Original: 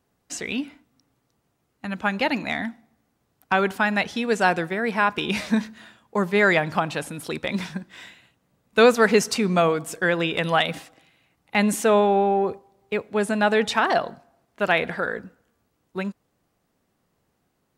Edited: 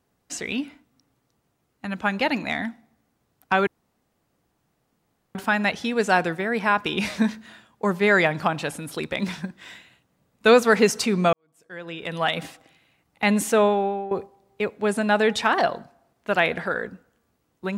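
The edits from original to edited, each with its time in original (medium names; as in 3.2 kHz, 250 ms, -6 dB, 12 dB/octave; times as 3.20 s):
3.67 s: insert room tone 1.68 s
9.65–10.77 s: fade in quadratic
11.90–12.43 s: fade out, to -14.5 dB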